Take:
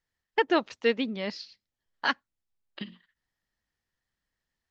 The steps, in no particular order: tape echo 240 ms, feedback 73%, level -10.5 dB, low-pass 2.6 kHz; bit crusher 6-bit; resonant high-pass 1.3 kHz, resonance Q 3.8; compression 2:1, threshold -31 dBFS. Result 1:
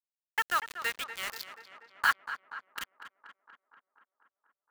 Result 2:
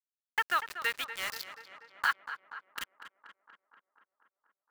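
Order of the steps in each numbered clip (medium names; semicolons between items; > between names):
compression > resonant high-pass > bit crusher > tape echo; resonant high-pass > bit crusher > compression > tape echo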